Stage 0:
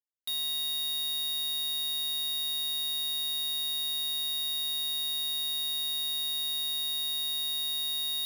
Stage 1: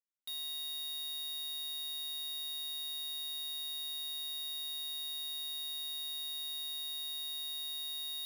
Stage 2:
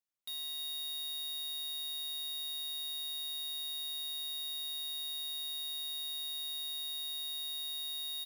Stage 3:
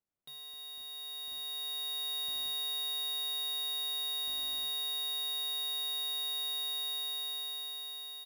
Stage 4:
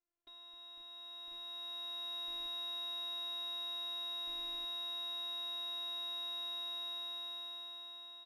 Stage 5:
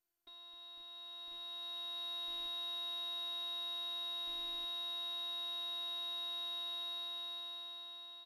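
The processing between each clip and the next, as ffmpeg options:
-af "bandreject=f=50:t=h:w=6,bandreject=f=100:t=h:w=6,bandreject=f=150:t=h:w=6,bandreject=f=200:t=h:w=6,bandreject=f=250:t=h:w=6,volume=0.376"
-af "aecho=1:1:312:0.0891"
-af "dynaudnorm=f=430:g=7:m=3.55,tiltshelf=f=1300:g=9"
-af "afftfilt=real='hypot(re,im)*cos(PI*b)':imag='0':win_size=512:overlap=0.75,adynamicsmooth=sensitivity=2:basefreq=2700,volume=1.41"
-ar 48000 -c:a mp2 -b:a 96k

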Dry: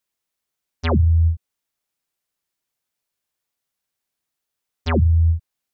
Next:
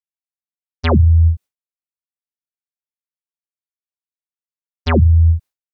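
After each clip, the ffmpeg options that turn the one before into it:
-af "agate=range=0.0224:threshold=0.0251:ratio=3:detection=peak,volume=1.78"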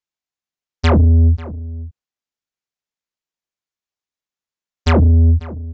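-filter_complex "[0:a]aresample=16000,asoftclip=type=tanh:threshold=0.188,aresample=44100,asplit=2[s0][s1];[s1]adelay=542.3,volume=0.141,highshelf=f=4000:g=-12.2[s2];[s0][s2]amix=inputs=2:normalize=0,volume=2.11"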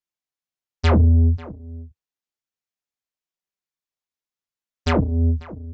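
-af "flanger=delay=4.9:depth=5:regen=-42:speed=0.57:shape=triangular"

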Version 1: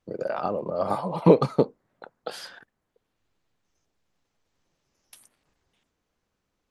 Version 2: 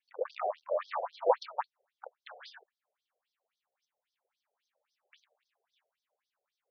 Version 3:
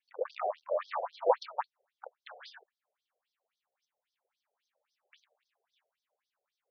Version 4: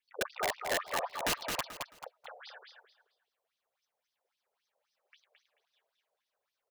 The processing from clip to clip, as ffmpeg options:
-af "aeval=exprs='clip(val(0),-1,0.0398)':c=same,equalizer=f=580:t=o:w=0.39:g=3,afftfilt=real='re*between(b*sr/1024,540*pow(4600/540,0.5+0.5*sin(2*PI*3.7*pts/sr))/1.41,540*pow(4600/540,0.5+0.5*sin(2*PI*3.7*pts/sr))*1.41)':imag='im*between(b*sr/1024,540*pow(4600/540,0.5+0.5*sin(2*PI*3.7*pts/sr))/1.41,540*pow(4600/540,0.5+0.5*sin(2*PI*3.7*pts/sr))*1.41)':win_size=1024:overlap=0.75"
-af anull
-af "aeval=exprs='(mod(17.8*val(0)+1,2)-1)/17.8':c=same,aecho=1:1:218|436|654:0.562|0.141|0.0351"

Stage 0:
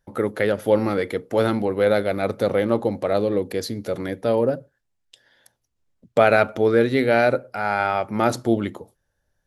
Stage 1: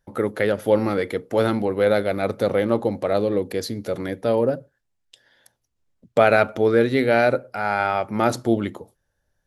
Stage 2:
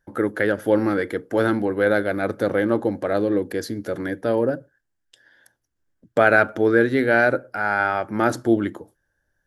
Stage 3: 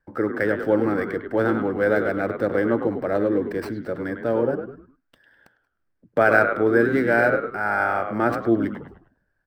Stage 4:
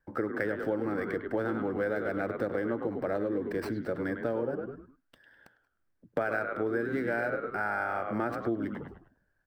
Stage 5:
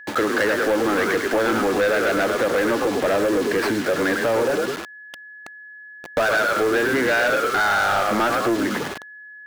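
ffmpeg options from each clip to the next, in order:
-af anull
-af "equalizer=f=315:t=o:w=0.33:g=8,equalizer=f=1600:t=o:w=0.33:g=11,equalizer=f=2500:t=o:w=0.33:g=-4,equalizer=f=4000:t=o:w=0.33:g=-4,volume=0.794"
-filter_complex "[0:a]acrossover=split=290|3100[s0][s1][s2];[s1]asplit=5[s3][s4][s5][s6][s7];[s4]adelay=102,afreqshift=-70,volume=0.501[s8];[s5]adelay=204,afreqshift=-140,volume=0.186[s9];[s6]adelay=306,afreqshift=-210,volume=0.0684[s10];[s7]adelay=408,afreqshift=-280,volume=0.0254[s11];[s3][s8][s9][s10][s11]amix=inputs=5:normalize=0[s12];[s2]acrusher=samples=13:mix=1:aa=0.000001[s13];[s0][s12][s13]amix=inputs=3:normalize=0,volume=0.841"
-af "acompressor=threshold=0.0562:ratio=6,volume=0.75"
-filter_complex "[0:a]acrusher=bits=7:mix=0:aa=0.000001,asplit=2[s0][s1];[s1]highpass=f=720:p=1,volume=14.1,asoftclip=type=tanh:threshold=0.158[s2];[s0][s2]amix=inputs=2:normalize=0,lowpass=f=6200:p=1,volume=0.501,aeval=exprs='val(0)+0.00708*sin(2*PI*1700*n/s)':c=same,volume=1.68"

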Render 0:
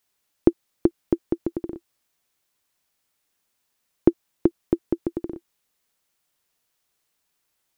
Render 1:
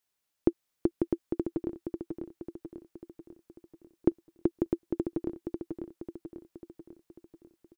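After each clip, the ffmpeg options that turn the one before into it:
-af "aecho=1:1:544|1088|1632|2176|2720|3264|3808:0.562|0.292|0.152|0.0791|0.0411|0.0214|0.0111,volume=0.398"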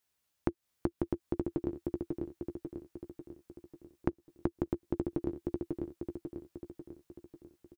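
-filter_complex "[0:a]equalizer=f=82:w=1.2:g=8,asplit=2[s0][s1];[s1]adelay=14,volume=0.398[s2];[s0][s2]amix=inputs=2:normalize=0,acompressor=threshold=0.0355:ratio=6,volume=1.12"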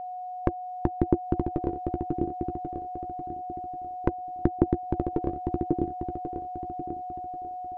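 -af "aphaser=in_gain=1:out_gain=1:delay=2.2:decay=0.44:speed=0.87:type=triangular,aeval=exprs='val(0)+0.01*sin(2*PI*730*n/s)':c=same,aemphasis=mode=reproduction:type=75fm,volume=2"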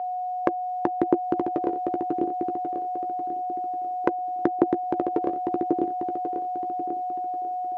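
-af "highpass=410,volume=2.37"

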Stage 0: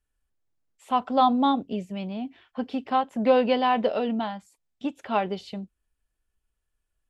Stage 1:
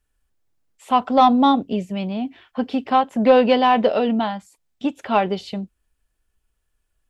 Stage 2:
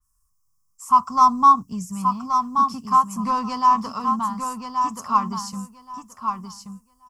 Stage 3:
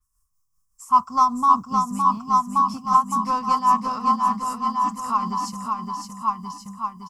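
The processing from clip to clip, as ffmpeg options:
-af "acontrast=81"
-filter_complex "[0:a]firequalizer=gain_entry='entry(170,0);entry(300,-18);entry(600,-28);entry(1100,13);entry(1500,-13);entry(3700,-21);entry(5300,10)':delay=0.05:min_phase=1,asplit=2[s0][s1];[s1]aecho=0:1:1127|2254|3381:0.501|0.0902|0.0162[s2];[s0][s2]amix=inputs=2:normalize=0,adynamicequalizer=threshold=0.0126:dfrequency=4300:dqfactor=0.7:tfrequency=4300:tqfactor=0.7:attack=5:release=100:ratio=0.375:range=2.5:mode=boostabove:tftype=highshelf"
-af "tremolo=f=5.1:d=0.52,aecho=1:1:563|1126|1689|2252|2815:0.631|0.24|0.0911|0.0346|0.0132"

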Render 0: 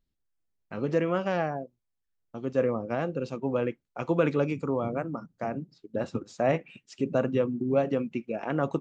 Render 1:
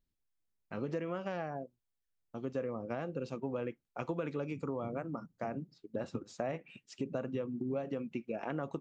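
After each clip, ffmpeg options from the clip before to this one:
-af "acompressor=threshold=0.0355:ratio=6,volume=0.631"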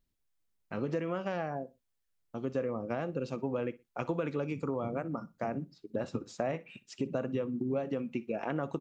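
-af "aecho=1:1:61|122:0.1|0.026,volume=1.5"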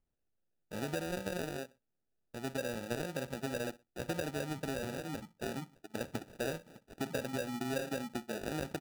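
-af "acrusher=samples=41:mix=1:aa=0.000001,volume=0.631"

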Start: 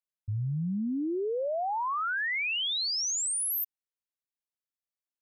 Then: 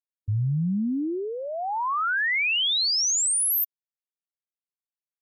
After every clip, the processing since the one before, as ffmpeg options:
-af "equalizer=f=530:w=1.1:g=-9,afftfilt=real='re*gte(hypot(re,im),0.00178)':imag='im*gte(hypot(re,im),0.00178)':win_size=1024:overlap=0.75,volume=2.24"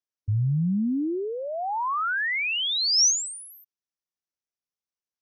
-af "lowpass=f=5800:t=q:w=4.9,highshelf=f=2400:g=-10.5,volume=1.12"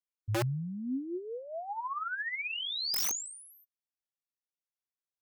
-af "flanger=delay=7.2:depth=1.6:regen=32:speed=1.2:shape=triangular,aeval=exprs='(mod(10.6*val(0)+1,2)-1)/10.6':c=same,volume=0.501"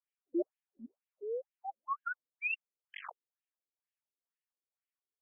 -af "afftfilt=real='re*between(b*sr/1024,340*pow(2400/340,0.5+0.5*sin(2*PI*2.1*pts/sr))/1.41,340*pow(2400/340,0.5+0.5*sin(2*PI*2.1*pts/sr))*1.41)':imag='im*between(b*sr/1024,340*pow(2400/340,0.5+0.5*sin(2*PI*2.1*pts/sr))/1.41,340*pow(2400/340,0.5+0.5*sin(2*PI*2.1*pts/sr))*1.41)':win_size=1024:overlap=0.75,volume=1.41"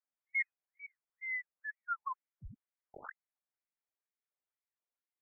-af "lowpass=f=2100:t=q:w=0.5098,lowpass=f=2100:t=q:w=0.6013,lowpass=f=2100:t=q:w=0.9,lowpass=f=2100:t=q:w=2.563,afreqshift=-2500,volume=0.891"

